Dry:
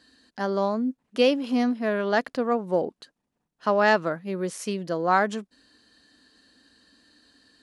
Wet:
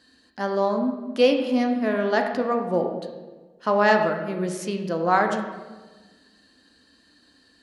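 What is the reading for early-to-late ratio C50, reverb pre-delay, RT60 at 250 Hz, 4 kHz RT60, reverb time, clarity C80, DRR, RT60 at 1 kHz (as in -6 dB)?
6.0 dB, 11 ms, 1.6 s, 0.90 s, 1.3 s, 8.0 dB, 3.5 dB, 1.2 s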